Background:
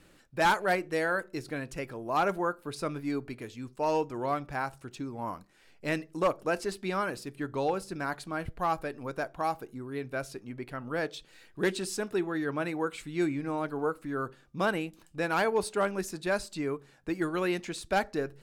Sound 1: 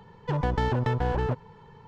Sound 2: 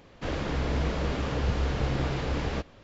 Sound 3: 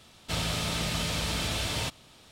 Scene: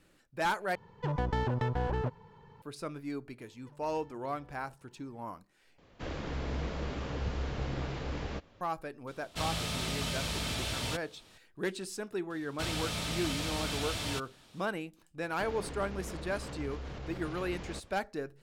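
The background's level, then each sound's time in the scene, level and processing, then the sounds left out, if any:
background −6 dB
0:00.75: overwrite with 1 −5.5 dB
0:03.39: mix in 1 −17.5 dB + downward compressor, threshold −38 dBFS
0:05.78: overwrite with 2 −7.5 dB
0:09.07: mix in 3 −4.5 dB
0:12.30: mix in 3 −5 dB
0:15.18: mix in 2 −6.5 dB + brickwall limiter −27.5 dBFS

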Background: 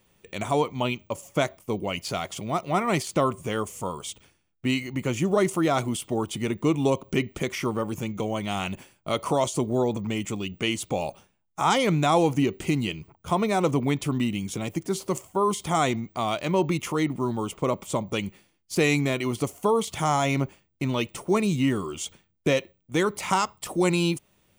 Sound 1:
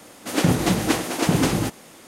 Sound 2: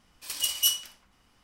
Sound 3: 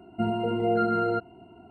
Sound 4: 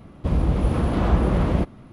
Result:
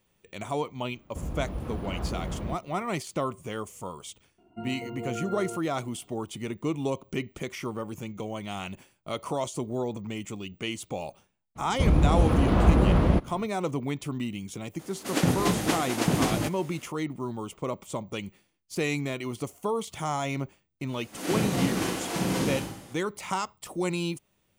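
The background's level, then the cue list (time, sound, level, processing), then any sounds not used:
background −6.5 dB
0:00.91: mix in 4 −13.5 dB
0:04.38: mix in 3 −11.5 dB
0:11.55: mix in 4 −0.5 dB, fades 0.02 s
0:14.79: mix in 1 −5 dB
0:20.87: mix in 1 −15.5 dB + four-comb reverb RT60 0.86 s, combs from 33 ms, DRR −8 dB
not used: 2

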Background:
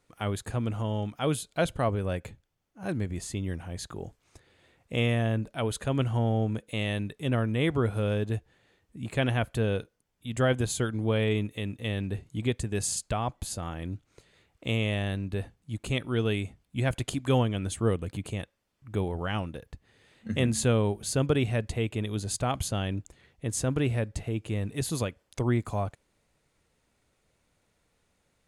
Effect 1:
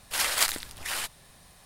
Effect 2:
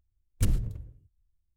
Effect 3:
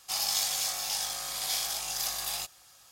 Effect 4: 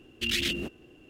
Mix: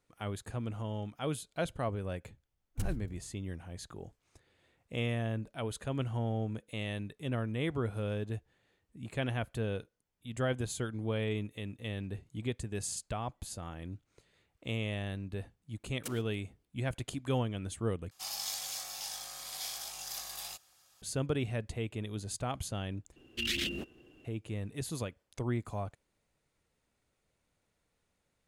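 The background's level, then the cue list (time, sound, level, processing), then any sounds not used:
background −7.5 dB
0:02.37: mix in 2 −10 dB
0:15.63: mix in 2 −5 dB + inverse Chebyshev high-pass filter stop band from 150 Hz
0:18.11: overwrite with 3 −9 dB
0:23.16: overwrite with 4 −5 dB
not used: 1

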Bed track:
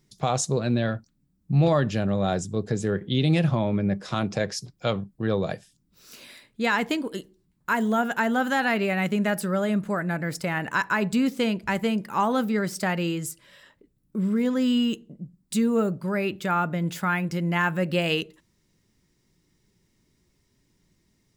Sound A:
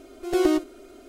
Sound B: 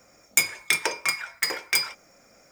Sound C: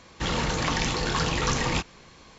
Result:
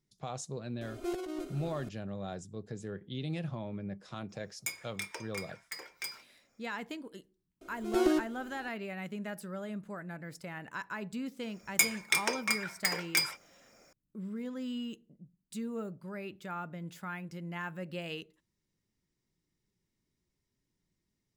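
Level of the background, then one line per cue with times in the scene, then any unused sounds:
bed track −15.5 dB
0:00.81: mix in A −7.5 dB + compressor whose output falls as the input rises −29 dBFS
0:04.29: mix in B −17 dB
0:07.61: mix in A −6.5 dB
0:11.42: mix in B −5.5 dB
not used: C

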